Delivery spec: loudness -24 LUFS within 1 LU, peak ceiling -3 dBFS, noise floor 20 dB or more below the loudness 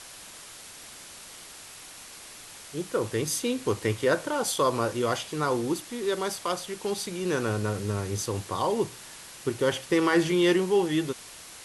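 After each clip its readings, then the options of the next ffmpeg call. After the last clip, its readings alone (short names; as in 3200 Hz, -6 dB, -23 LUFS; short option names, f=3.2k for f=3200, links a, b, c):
noise floor -46 dBFS; noise floor target -48 dBFS; loudness -27.5 LUFS; peak -11.0 dBFS; loudness target -24.0 LUFS
-> -af "afftdn=nr=6:nf=-46"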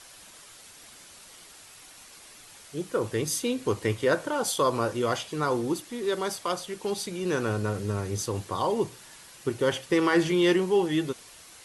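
noise floor -50 dBFS; loudness -27.5 LUFS; peak -11.0 dBFS; loudness target -24.0 LUFS
-> -af "volume=3.5dB"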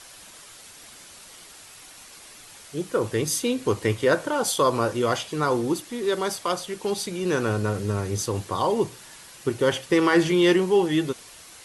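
loudness -24.0 LUFS; peak -7.5 dBFS; noise floor -47 dBFS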